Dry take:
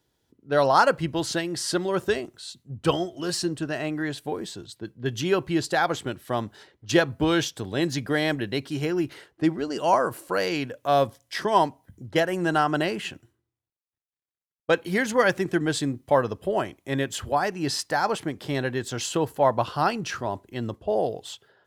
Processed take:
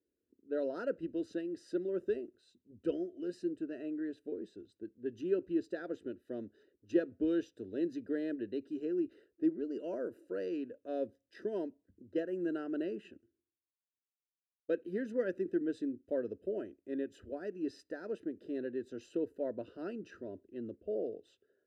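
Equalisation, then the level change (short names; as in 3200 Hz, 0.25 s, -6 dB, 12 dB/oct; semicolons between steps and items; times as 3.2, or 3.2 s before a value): running mean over 40 samples; HPF 230 Hz 6 dB/oct; fixed phaser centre 340 Hz, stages 4; -4.5 dB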